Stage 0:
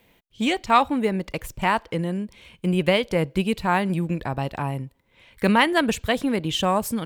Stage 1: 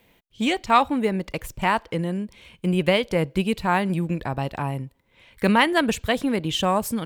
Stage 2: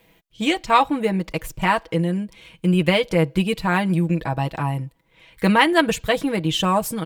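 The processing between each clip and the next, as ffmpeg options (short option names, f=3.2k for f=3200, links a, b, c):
-af anull
-af "aecho=1:1:6.2:0.65,volume=1dB"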